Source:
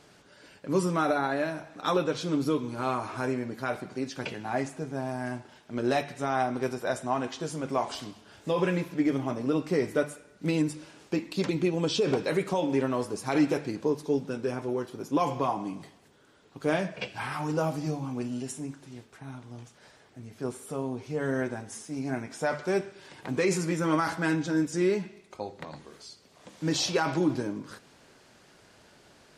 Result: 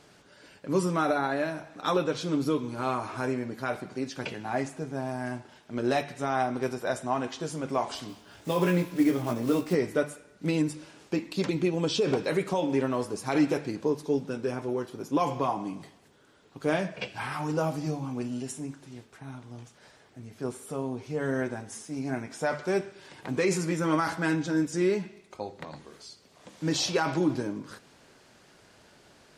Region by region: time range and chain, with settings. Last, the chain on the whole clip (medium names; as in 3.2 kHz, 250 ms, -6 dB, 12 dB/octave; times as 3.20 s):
8.08–9.75 s: block-companded coder 5-bit + doubling 17 ms -4.5 dB
whole clip: none